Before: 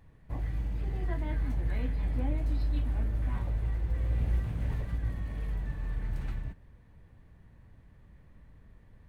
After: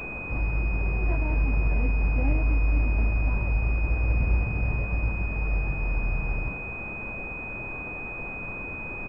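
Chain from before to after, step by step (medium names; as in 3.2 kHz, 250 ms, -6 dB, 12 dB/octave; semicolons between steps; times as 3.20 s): doubling 22 ms -11 dB; added noise pink -42 dBFS; class-D stage that switches slowly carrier 2.5 kHz; trim +5 dB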